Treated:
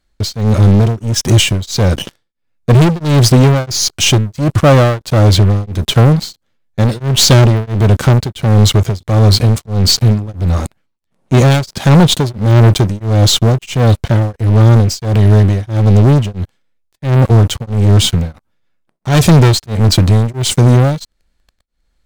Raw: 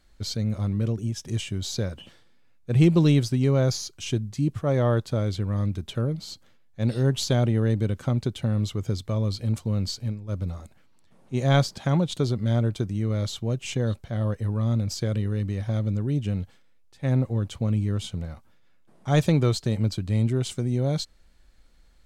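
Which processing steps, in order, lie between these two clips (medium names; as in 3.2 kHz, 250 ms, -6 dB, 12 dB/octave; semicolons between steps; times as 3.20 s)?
waveshaping leveller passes 5; tremolo of two beating tones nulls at 1.5 Hz; trim +6.5 dB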